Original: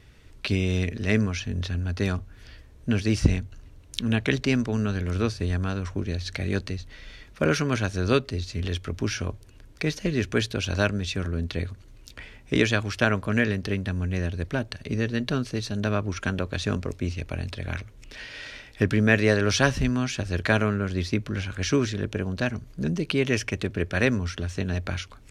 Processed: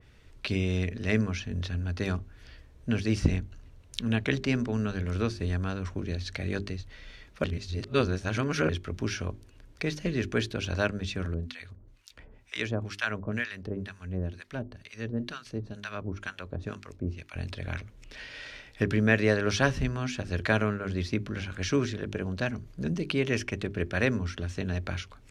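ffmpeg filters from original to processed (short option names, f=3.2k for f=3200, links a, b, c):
-filter_complex "[0:a]asettb=1/sr,asplit=3[a][b][c];[a]atrim=end=11.344[d];[b]atrim=start=11.34:end=17.36,asetpts=PTS-STARTPTS,afade=t=in:d=0.004:c=qsin,afade=t=out:st=6.016:d=0.004:c=qsin,acrossover=split=950[e][f];[e]aeval=exprs='val(0)*(1-1/2+1/2*cos(2*PI*2.1*n/s))':c=same[g];[f]aeval=exprs='val(0)*(1-1/2-1/2*cos(2*PI*2.1*n/s))':c=same[h];[g][h]amix=inputs=2:normalize=0[i];[c]atrim=start=17.356[j];[d][i]acrossfade=d=0.004:c1=hsin:c2=qsin[k];[k][j]acrossfade=d=0.004:c1=qsin:c2=hsin,asplit=3[l][m][n];[l]atrim=end=7.442[o];[m]atrim=start=7.438:end=8.692,asetpts=PTS-STARTPTS,areverse[p];[n]atrim=start=8.688[q];[o][p]acrossfade=d=0.004:c1=hsin:c2=hsin[r];[r][q]acrossfade=d=0.004:c1=hsin:c2=hsin,highshelf=f=7.5k:g=-5,bandreject=f=50:t=h:w=6,bandreject=f=100:t=h:w=6,bandreject=f=150:t=h:w=6,bandreject=f=200:t=h:w=6,bandreject=f=250:t=h:w=6,bandreject=f=300:t=h:w=6,bandreject=f=350:t=h:w=6,bandreject=f=400:t=h:w=6,adynamicequalizer=threshold=0.0126:dfrequency=2600:dqfactor=0.7:tfrequency=2600:tqfactor=0.7:attack=5:release=100:ratio=0.375:range=1.5:mode=cutabove:tftype=highshelf,volume=-3dB"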